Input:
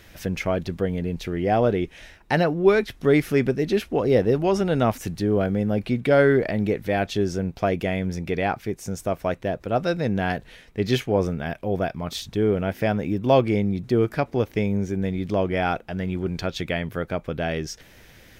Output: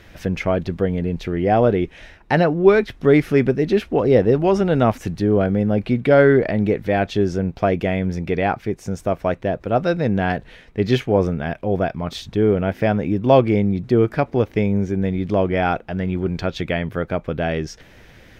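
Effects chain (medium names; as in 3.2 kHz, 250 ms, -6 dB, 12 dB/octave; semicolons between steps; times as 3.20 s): low-pass 2.8 kHz 6 dB/octave; trim +4.5 dB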